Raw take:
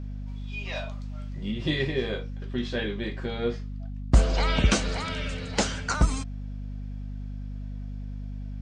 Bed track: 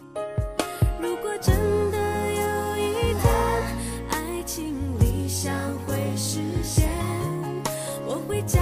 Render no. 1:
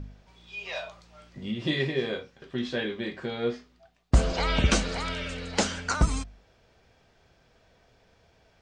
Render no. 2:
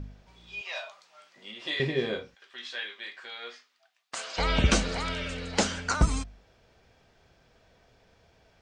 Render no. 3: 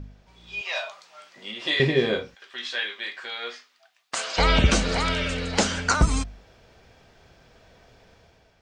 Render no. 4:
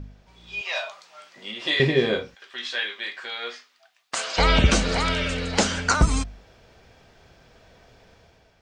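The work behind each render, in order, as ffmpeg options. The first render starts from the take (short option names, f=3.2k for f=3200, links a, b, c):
-af "bandreject=f=50:t=h:w=4,bandreject=f=100:t=h:w=4,bandreject=f=150:t=h:w=4,bandreject=f=200:t=h:w=4,bandreject=f=250:t=h:w=4"
-filter_complex "[0:a]asettb=1/sr,asplit=3[a][b][c];[a]atrim=end=0.614[d];[b]atrim=start=0.61:end=1.8,asetpts=PTS-STARTPTS,afade=t=in:d=0.004:c=qsin,afade=t=out:st=1.186:d=0.004:c=qsin,highpass=720[e];[c]atrim=start=1.796[f];[d][e]acrossfade=d=0.004:c1=hsin:c2=qsin[g];[g][f]acrossfade=d=0.004:c1=qsin:c2=hsin,asplit=3[h][i][j];[h]afade=t=out:st=2.34:d=0.02[k];[i]highpass=1.3k,afade=t=in:st=2.34:d=0.02,afade=t=out:st=4.37:d=0.02[l];[j]afade=t=in:st=4.37:d=0.02[m];[k][l][m]amix=inputs=3:normalize=0"
-af "alimiter=limit=-15.5dB:level=0:latency=1:release=217,dynaudnorm=f=140:g=7:m=7.5dB"
-af "volume=1dB"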